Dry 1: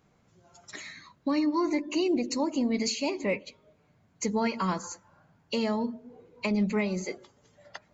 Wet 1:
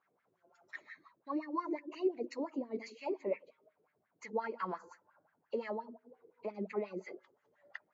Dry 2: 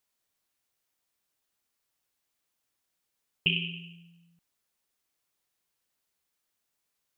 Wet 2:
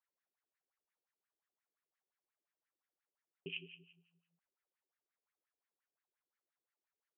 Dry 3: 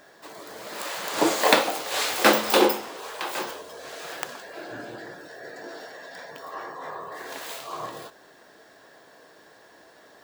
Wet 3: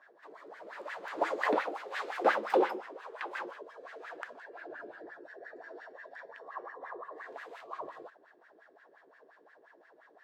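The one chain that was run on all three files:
LFO wah 5.7 Hz 350–1,900 Hz, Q 4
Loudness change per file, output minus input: −11.0, −18.0, −10.5 LU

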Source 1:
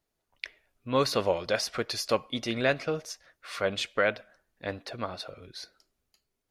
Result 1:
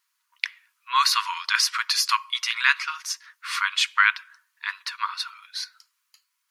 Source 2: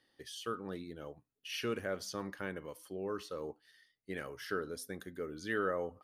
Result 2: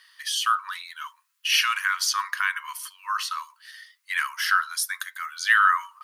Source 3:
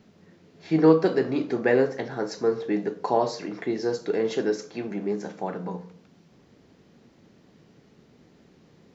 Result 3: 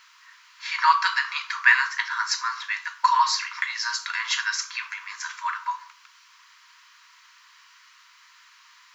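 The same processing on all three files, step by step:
linear-phase brick-wall high-pass 920 Hz
notch filter 3,600 Hz, Q 29
loudness normalisation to −24 LKFS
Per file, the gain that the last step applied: +11.0, +20.0, +14.0 decibels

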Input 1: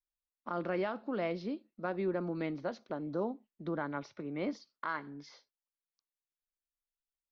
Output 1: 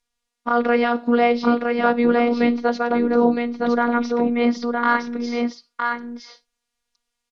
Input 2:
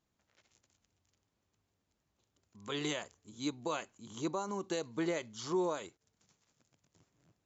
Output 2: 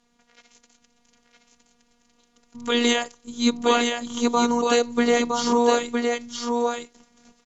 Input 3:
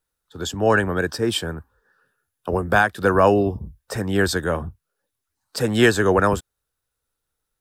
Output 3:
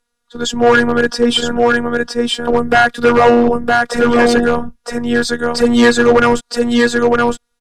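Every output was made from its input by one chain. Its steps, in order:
on a send: single-tap delay 963 ms −4 dB
on the sum: phases set to zero 239 Hz
hard clipping −15.5 dBFS
low-pass filter 8,000 Hz 12 dB per octave
normalise the peak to −3 dBFS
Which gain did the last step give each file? +19.5, +18.5, +12.0 decibels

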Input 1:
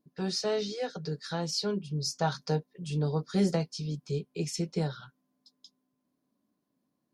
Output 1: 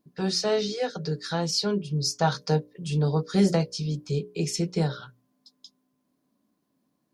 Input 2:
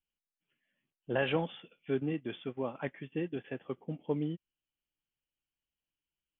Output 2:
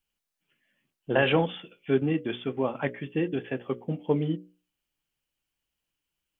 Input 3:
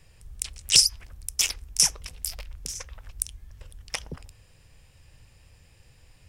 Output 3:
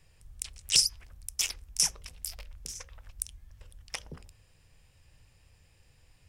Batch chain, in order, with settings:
mains-hum notches 60/120/180/240/300/360/420/480/540/600 Hz
normalise the peak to −9 dBFS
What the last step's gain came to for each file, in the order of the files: +5.5, +8.5, −6.0 decibels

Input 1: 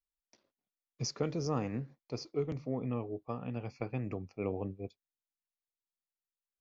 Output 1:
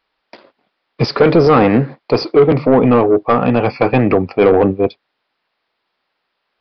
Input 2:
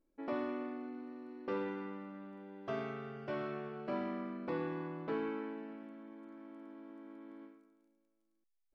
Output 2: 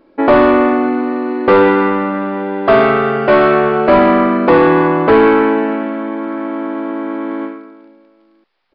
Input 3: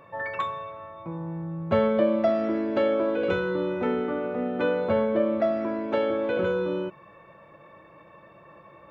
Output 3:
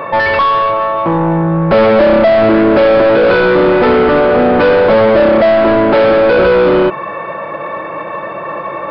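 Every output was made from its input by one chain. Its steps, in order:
mid-hump overdrive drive 31 dB, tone 1,200 Hz, clips at −10.5 dBFS
downsampling to 11,025 Hz
normalise the peak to −1.5 dBFS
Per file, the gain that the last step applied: +12.5, +14.0, +9.5 decibels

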